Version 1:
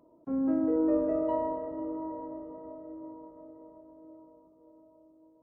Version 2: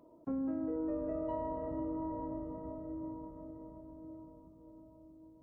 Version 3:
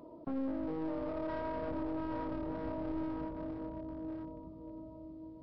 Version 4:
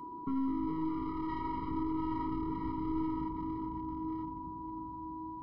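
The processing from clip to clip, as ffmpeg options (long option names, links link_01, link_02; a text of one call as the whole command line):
ffmpeg -i in.wav -af "asubboost=boost=7.5:cutoff=180,acompressor=threshold=-35dB:ratio=6,volume=1dB" out.wav
ffmpeg -i in.wav -af "alimiter=level_in=13dB:limit=-24dB:level=0:latency=1:release=71,volume=-13dB,aresample=11025,aeval=exprs='clip(val(0),-1,0.00376)':channel_layout=same,aresample=44100,volume=8.5dB" out.wav
ffmpeg -i in.wav -af "aeval=exprs='val(0)+0.00501*sin(2*PI*980*n/s)':channel_layout=same,afftfilt=real='re*eq(mod(floor(b*sr/1024/470),2),0)':imag='im*eq(mod(floor(b*sr/1024/470),2),0)':win_size=1024:overlap=0.75,volume=3.5dB" out.wav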